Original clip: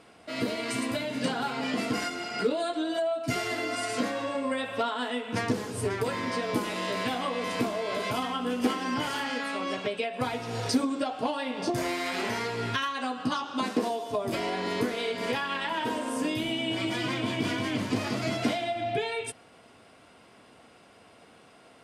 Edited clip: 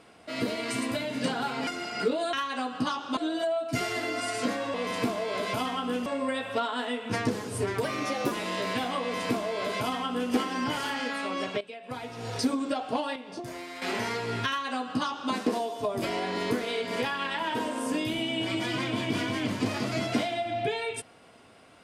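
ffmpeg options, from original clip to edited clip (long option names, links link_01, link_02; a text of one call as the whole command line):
ffmpeg -i in.wav -filter_complex "[0:a]asplit=11[link_01][link_02][link_03][link_04][link_05][link_06][link_07][link_08][link_09][link_10][link_11];[link_01]atrim=end=1.672[link_12];[link_02]atrim=start=2.058:end=2.722[link_13];[link_03]atrim=start=12.778:end=13.622[link_14];[link_04]atrim=start=2.718:end=4.292[link_15];[link_05]atrim=start=7.308:end=8.632[link_16];[link_06]atrim=start=4.288:end=6.074[link_17];[link_07]atrim=start=6.07:end=6.62,asetpts=PTS-STARTPTS,asetrate=50715,aresample=44100,atrim=end_sample=21091,asetpts=PTS-STARTPTS[link_18];[link_08]atrim=start=6.616:end=9.91,asetpts=PTS-STARTPTS,afade=type=out:start_time=3.29:duration=0.004:curve=hsin:silence=0.16788[link_19];[link_09]atrim=start=9.91:end=11.462,asetpts=PTS-STARTPTS,afade=type=in:duration=1.05:silence=0.16788[link_20];[link_10]atrim=start=11.458:end=12.122,asetpts=PTS-STARTPTS,volume=-9.5dB[link_21];[link_11]atrim=start=12.118[link_22];[link_12][link_13]acrossfade=duration=0.004:curve1=hsin:curve2=hsin[link_23];[link_23][link_14]acrossfade=duration=0.004:curve1=hsin:curve2=hsin[link_24];[link_24][link_15]acrossfade=duration=0.004:curve1=hsin:curve2=hsin[link_25];[link_25][link_16]acrossfade=duration=0.004:curve1=hsin:curve2=hsin[link_26];[link_26][link_17]acrossfade=duration=0.004:curve1=hsin:curve2=hsin[link_27];[link_27][link_18]acrossfade=duration=0.004:curve1=hsin:curve2=hsin[link_28];[link_19][link_20]concat=n=2:v=0:a=1[link_29];[link_28][link_29]acrossfade=duration=0.004:curve1=hsin:curve2=hsin[link_30];[link_30][link_21]acrossfade=duration=0.004:curve1=hsin:curve2=hsin[link_31];[link_31][link_22]acrossfade=duration=0.004:curve1=hsin:curve2=hsin" out.wav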